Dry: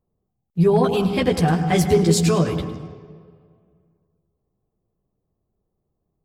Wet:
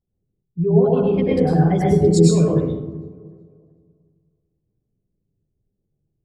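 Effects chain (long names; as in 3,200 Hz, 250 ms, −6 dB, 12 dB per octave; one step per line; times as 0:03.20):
spectral envelope exaggerated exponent 2
on a send: delay with a low-pass on its return 375 ms, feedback 32%, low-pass 1,500 Hz, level −24 dB
on the sum: dense smooth reverb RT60 0.69 s, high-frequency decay 0.6×, pre-delay 90 ms, DRR −5 dB
level −4.5 dB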